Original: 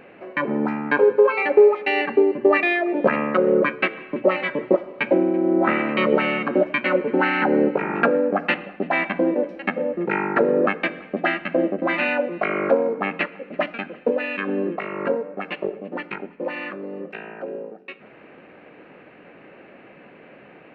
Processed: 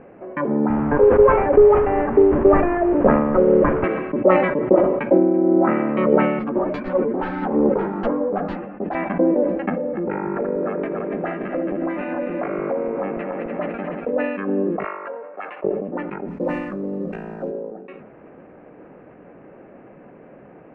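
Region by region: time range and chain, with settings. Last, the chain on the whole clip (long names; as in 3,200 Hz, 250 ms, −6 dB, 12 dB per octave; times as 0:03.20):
0:00.70–0:03.84: linear delta modulator 16 kbit/s, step −23.5 dBFS + low-pass filter 1,800 Hz + multiband upward and downward compressor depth 40%
0:06.39–0:08.95: phase distortion by the signal itself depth 0.29 ms + high-shelf EQ 2,500 Hz −7.5 dB + string-ensemble chorus
0:09.69–0:14.13: feedback delay that plays each chunk backwards 145 ms, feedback 73%, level −7 dB + downward compressor 4 to 1, threshold −23 dBFS
0:14.84–0:15.64: high-pass filter 990 Hz + multiband upward and downward compressor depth 100%
0:16.28–0:17.51: variable-slope delta modulation 64 kbit/s + bass and treble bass +10 dB, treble +12 dB
whole clip: low-pass filter 1,100 Hz 12 dB per octave; low-shelf EQ 85 Hz +10.5 dB; level that may fall only so fast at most 46 dB per second; level +2 dB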